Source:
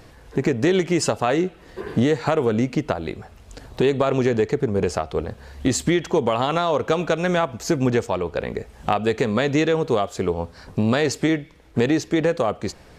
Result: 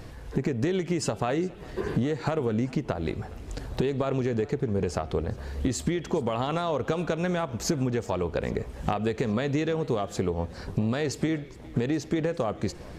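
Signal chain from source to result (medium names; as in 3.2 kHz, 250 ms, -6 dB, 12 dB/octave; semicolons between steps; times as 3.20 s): bass shelf 260 Hz +6.5 dB; compression 6:1, threshold -24 dBFS, peak gain reduction 12.5 dB; modulated delay 409 ms, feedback 72%, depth 131 cents, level -22 dB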